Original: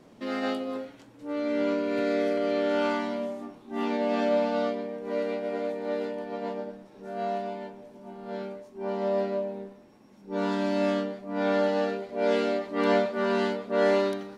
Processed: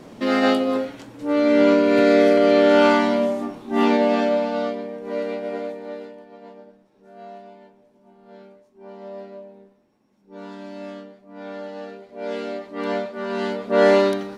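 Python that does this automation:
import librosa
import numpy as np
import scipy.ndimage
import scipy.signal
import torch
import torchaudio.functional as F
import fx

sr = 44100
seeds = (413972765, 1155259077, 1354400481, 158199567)

y = fx.gain(x, sr, db=fx.line((3.89, 11.5), (4.39, 3.0), (5.55, 3.0), (6.29, -9.5), (11.64, -9.5), (12.57, -2.0), (13.28, -2.0), (13.73, 8.0)))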